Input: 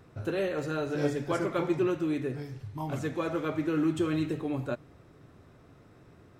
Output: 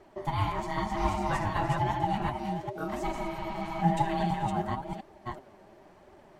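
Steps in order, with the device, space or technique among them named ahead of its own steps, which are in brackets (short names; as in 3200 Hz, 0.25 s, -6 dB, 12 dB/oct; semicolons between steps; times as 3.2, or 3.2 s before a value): reverse delay 0.385 s, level -3.5 dB; spectral repair 3.16–3.8, 290–5100 Hz before; alien voice (ring modulator 490 Hz; flange 0.98 Hz, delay 2.3 ms, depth 8.6 ms, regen +36%); gain +6 dB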